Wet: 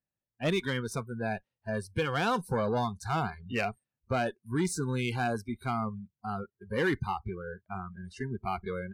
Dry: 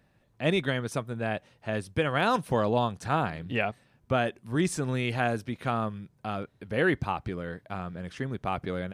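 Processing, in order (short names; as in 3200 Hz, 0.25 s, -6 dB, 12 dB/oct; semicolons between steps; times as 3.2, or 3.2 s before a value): soft clip -21.5 dBFS, distortion -13 dB; added harmonics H 8 -31 dB, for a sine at -21.5 dBFS; spectral noise reduction 29 dB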